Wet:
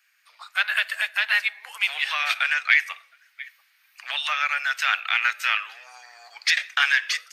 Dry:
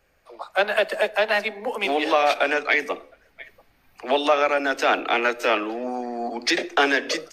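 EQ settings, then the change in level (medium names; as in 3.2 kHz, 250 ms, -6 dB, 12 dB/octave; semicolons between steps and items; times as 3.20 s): high-pass 1.5 kHz 24 dB/octave; dynamic bell 5.5 kHz, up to -5 dB, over -42 dBFS, Q 1.1; +4.5 dB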